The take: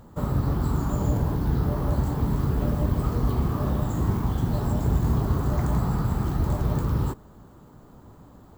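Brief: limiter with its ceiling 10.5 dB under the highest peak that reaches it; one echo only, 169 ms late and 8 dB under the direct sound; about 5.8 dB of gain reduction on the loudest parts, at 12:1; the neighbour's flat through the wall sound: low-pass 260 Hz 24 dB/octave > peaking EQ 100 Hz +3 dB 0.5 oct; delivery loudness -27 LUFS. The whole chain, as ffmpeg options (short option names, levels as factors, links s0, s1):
-af "acompressor=threshold=0.0631:ratio=12,alimiter=level_in=1.19:limit=0.0631:level=0:latency=1,volume=0.841,lowpass=f=260:w=0.5412,lowpass=f=260:w=1.3066,equalizer=f=100:t=o:w=0.5:g=3,aecho=1:1:169:0.398,volume=2.24"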